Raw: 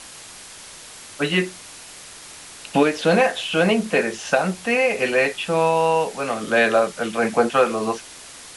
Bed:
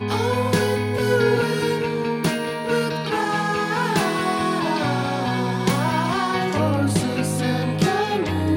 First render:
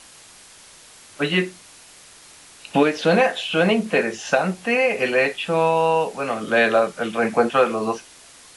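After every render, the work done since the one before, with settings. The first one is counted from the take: noise print and reduce 6 dB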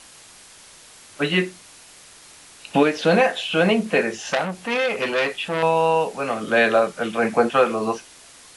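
4.27–5.63 core saturation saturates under 2300 Hz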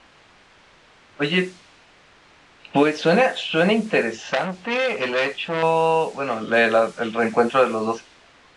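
low-pass opened by the level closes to 2400 Hz, open at -14.5 dBFS; LPF 9900 Hz 24 dB/oct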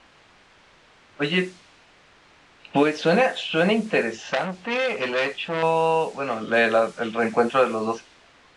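gain -2 dB

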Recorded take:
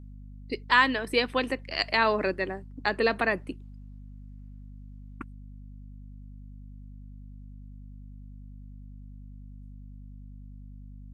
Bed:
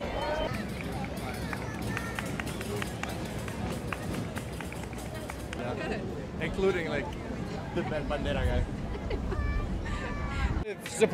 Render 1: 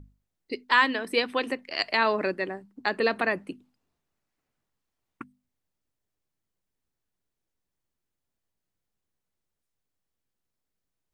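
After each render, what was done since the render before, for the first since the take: notches 50/100/150/200/250 Hz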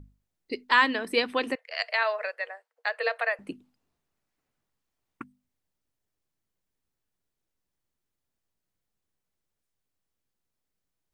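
1.55–3.39 rippled Chebyshev high-pass 460 Hz, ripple 6 dB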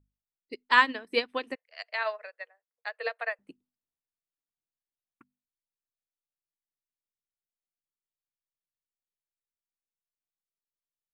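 in parallel at -1 dB: limiter -19.5 dBFS, peak gain reduction 11 dB; on the sum: upward expander 2.5:1, over -34 dBFS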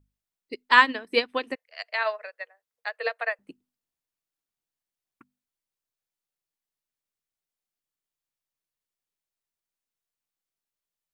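gain +4 dB

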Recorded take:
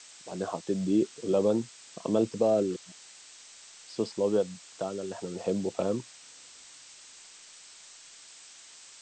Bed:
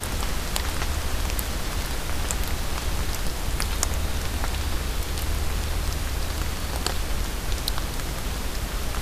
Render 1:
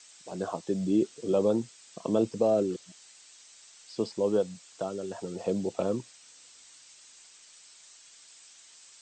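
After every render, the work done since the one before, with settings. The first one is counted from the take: denoiser 6 dB, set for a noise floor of -52 dBFS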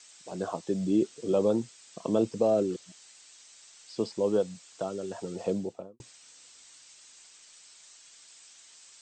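5.45–6 studio fade out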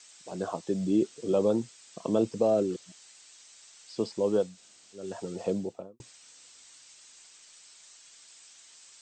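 4.51–5 room tone, crossfade 0.16 s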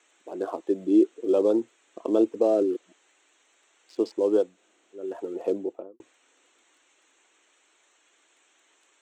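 Wiener smoothing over 9 samples; resonant low shelf 220 Hz -13 dB, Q 3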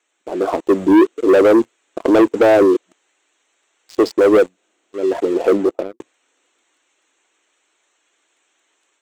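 sample leveller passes 3; AGC gain up to 5 dB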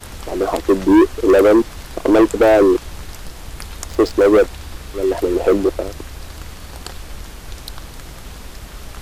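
add bed -5.5 dB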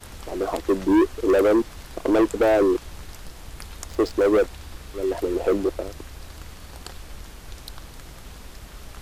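gain -7 dB

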